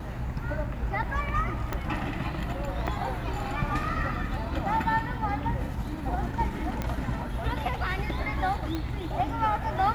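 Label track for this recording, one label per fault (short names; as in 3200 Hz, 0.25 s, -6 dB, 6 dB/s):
1.730000	1.730000	pop -16 dBFS
2.870000	2.880000	gap 5.8 ms
6.820000	6.820000	pop -16 dBFS
8.750000	8.750000	pop -18 dBFS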